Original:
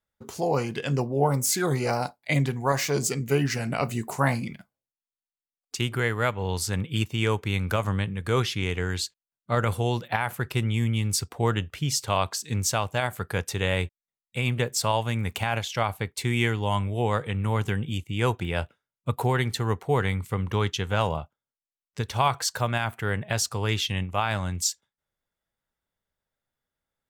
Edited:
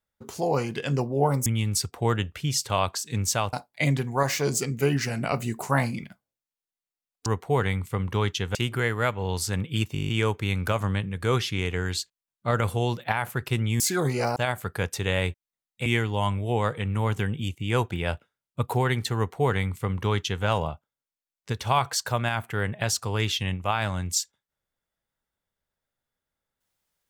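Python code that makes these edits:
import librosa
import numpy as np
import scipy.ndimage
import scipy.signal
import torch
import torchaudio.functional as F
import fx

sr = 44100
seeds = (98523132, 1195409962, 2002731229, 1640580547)

y = fx.edit(x, sr, fx.swap(start_s=1.46, length_s=0.56, other_s=10.84, other_length_s=2.07),
    fx.stutter(start_s=7.13, slice_s=0.02, count=9),
    fx.cut(start_s=14.41, length_s=1.94),
    fx.duplicate(start_s=19.65, length_s=1.29, to_s=5.75), tone=tone)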